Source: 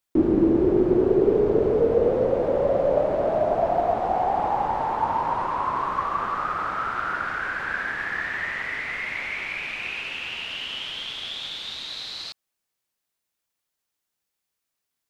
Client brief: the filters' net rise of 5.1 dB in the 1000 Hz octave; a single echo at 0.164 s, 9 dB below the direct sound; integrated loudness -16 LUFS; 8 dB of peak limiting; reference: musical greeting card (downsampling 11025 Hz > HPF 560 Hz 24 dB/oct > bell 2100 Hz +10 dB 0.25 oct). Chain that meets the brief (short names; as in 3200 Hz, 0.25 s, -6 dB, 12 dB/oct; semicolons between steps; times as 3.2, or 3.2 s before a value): bell 1000 Hz +6.5 dB; limiter -15 dBFS; echo 0.164 s -9 dB; downsampling 11025 Hz; HPF 560 Hz 24 dB/oct; bell 2100 Hz +10 dB 0.25 oct; gain +7.5 dB